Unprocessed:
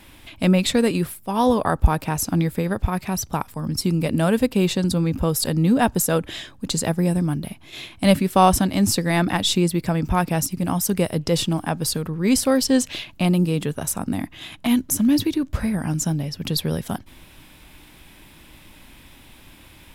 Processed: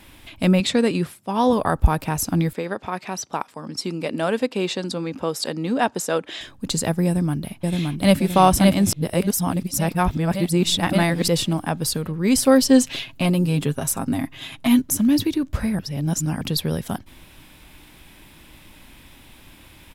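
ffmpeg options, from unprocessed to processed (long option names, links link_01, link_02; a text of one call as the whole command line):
ffmpeg -i in.wav -filter_complex "[0:a]asettb=1/sr,asplit=3[link_01][link_02][link_03];[link_01]atrim=end=0.604[link_04];[link_02]atrim=start=0.6:end=1.53,asetpts=PTS-STARTPTS,afade=type=in:duration=0.004:curve=qsin,afade=type=out:start_time=0.926:duration=0.004:curve=qsin,highpass=110,lowpass=7800[link_05];[link_03]atrim=start=1.526[link_06];[link_04][link_05]acrossfade=duration=0.004:curve1=hsin:curve2=qsin[link_07];[link_07][link_06]acrossfade=duration=0.004:curve1=qsin:curve2=hsin,asettb=1/sr,asplit=3[link_08][link_09][link_10];[link_08]atrim=end=2.534[link_11];[link_09]atrim=start=2.53:end=6.41,asetpts=PTS-STARTPTS,afade=type=in:duration=0.004:curve=qsin,afade=type=out:start_time=3.876:duration=0.004:curve=qsin,highpass=310,lowpass=6700[link_12];[link_10]atrim=start=6.406[link_13];[link_11][link_12]acrossfade=duration=0.004:curve1=hsin:curve2=qsin[link_14];[link_14][link_13]acrossfade=duration=0.004:curve1=qsin:curve2=hsin,asplit=2[link_15][link_16];[link_16]afade=type=in:start_time=7.06:duration=0.01,afade=type=out:start_time=8.16:duration=0.01,aecho=0:1:570|1140|1710|2280|2850|3420|3990|4560:0.794328|0.436881|0.240284|0.132156|0.072686|0.0399773|0.0219875|0.0120931[link_17];[link_15][link_17]amix=inputs=2:normalize=0,asettb=1/sr,asplit=3[link_18][link_19][link_20];[link_18]atrim=end=12.374[link_21];[link_19]atrim=start=12.37:end=14.82,asetpts=PTS-STARTPTS,afade=type=in:duration=0.004:curve=qsin,afade=type=out:start_time=2.446:duration=0.004:curve=qsin,aecho=1:1:7.5:0.65,atrim=end_sample=108045[link_22];[link_20]atrim=start=14.816[link_23];[link_21][link_22]acrossfade=duration=0.004:curve1=hsin:curve2=qsin[link_24];[link_24][link_23]acrossfade=duration=0.004:curve1=qsin:curve2=hsin,asplit=5[link_25][link_26][link_27][link_28][link_29];[link_25]atrim=end=8.922[link_30];[link_26]atrim=start=8.918:end=11.282,asetpts=PTS-STARTPTS,areverse[link_31];[link_27]atrim=start=11.278:end=15.792[link_32];[link_28]atrim=start=15.788:end=16.412,asetpts=PTS-STARTPTS,areverse[link_33];[link_29]atrim=start=16.408[link_34];[link_30][link_31]acrossfade=duration=0.004:curve1=hsin:curve2=hsin[link_35];[link_35][link_32]acrossfade=duration=0.004:curve1=hsin:curve2=hsin[link_36];[link_36][link_33]acrossfade=duration=0.004:curve1=hsin:curve2=hsin[link_37];[link_37][link_34]acrossfade=duration=0.004:curve1=hsin:curve2=hsin" out.wav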